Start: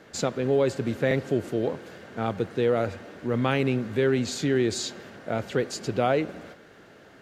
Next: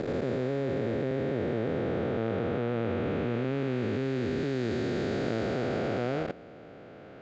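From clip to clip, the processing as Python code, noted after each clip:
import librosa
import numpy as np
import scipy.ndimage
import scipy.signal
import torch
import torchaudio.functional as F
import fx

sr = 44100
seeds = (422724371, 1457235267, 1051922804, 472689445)

y = fx.spec_blur(x, sr, span_ms=1420.0)
y = fx.level_steps(y, sr, step_db=18)
y = fx.air_absorb(y, sr, metres=160.0)
y = y * librosa.db_to_amplitude(6.5)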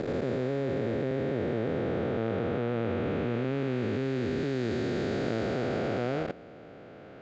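y = x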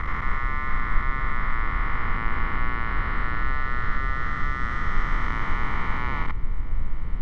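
y = x * np.sin(2.0 * np.pi * 1600.0 * np.arange(len(x)) / sr)
y = fx.dmg_noise_colour(y, sr, seeds[0], colour='brown', level_db=-47.0)
y = fx.tilt_eq(y, sr, slope=-4.0)
y = y * librosa.db_to_amplitude(4.0)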